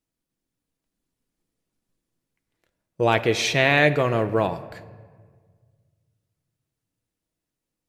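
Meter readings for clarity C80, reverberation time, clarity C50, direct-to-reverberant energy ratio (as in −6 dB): 15.5 dB, 1.7 s, 14.5 dB, 9.5 dB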